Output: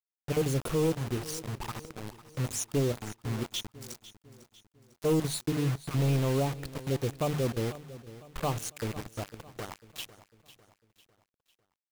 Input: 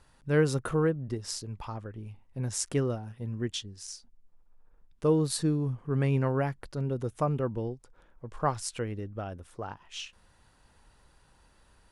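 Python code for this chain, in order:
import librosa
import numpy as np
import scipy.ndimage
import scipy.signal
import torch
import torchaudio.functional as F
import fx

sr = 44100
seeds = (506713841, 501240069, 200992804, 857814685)

p1 = fx.spec_dropout(x, sr, seeds[0], share_pct=24)
p2 = fx.hum_notches(p1, sr, base_hz=50, count=7)
p3 = 10.0 ** (-26.0 / 20.0) * (np.abs((p2 / 10.0 ** (-26.0 / 20.0) + 3.0) % 4.0 - 2.0) - 1.0)
p4 = p2 + F.gain(torch.from_numpy(p3), -4.0).numpy()
p5 = fx.env_flanger(p4, sr, rest_ms=7.8, full_db=-27.5)
p6 = fx.quant_dither(p5, sr, seeds[1], bits=6, dither='none')
p7 = p6 + fx.echo_feedback(p6, sr, ms=500, feedback_pct=45, wet_db=-16.5, dry=0)
y = F.gain(torch.from_numpy(p7), -1.5).numpy()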